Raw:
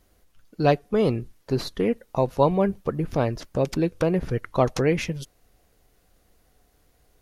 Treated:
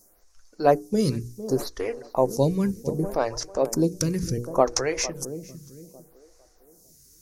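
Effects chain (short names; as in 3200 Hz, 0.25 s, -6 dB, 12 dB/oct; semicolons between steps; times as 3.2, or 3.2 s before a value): resonant high shelf 4300 Hz +11 dB, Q 3; notches 60/120/180/240/300/360/420/480 Hz; tape echo 0.452 s, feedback 49%, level -13 dB, low-pass 1000 Hz; photocell phaser 0.67 Hz; gain +2.5 dB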